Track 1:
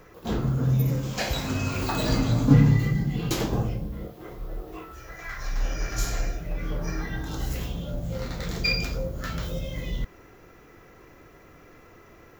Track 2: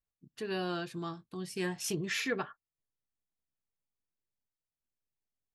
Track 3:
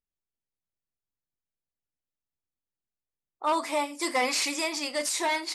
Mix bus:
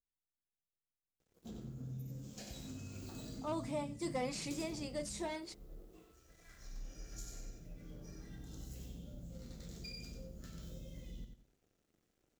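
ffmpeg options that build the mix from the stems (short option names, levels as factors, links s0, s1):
-filter_complex "[0:a]equalizer=f=220:w=1.5:g=6,acompressor=threshold=0.0562:ratio=6,aeval=exprs='sgn(val(0))*max(abs(val(0))-0.00398,0)':c=same,adelay=1200,volume=0.112,asplit=2[s0][s1];[s1]volume=0.501[s2];[2:a]lowpass=f=1000:p=1,volume=0.531[s3];[s2]aecho=0:1:93|186|279|372:1|0.26|0.0676|0.0176[s4];[s0][s3][s4]amix=inputs=3:normalize=0,equalizer=f=1000:t=o:w=1:g=-9,equalizer=f=2000:t=o:w=1:g=-6,equalizer=f=8000:t=o:w=1:g=8"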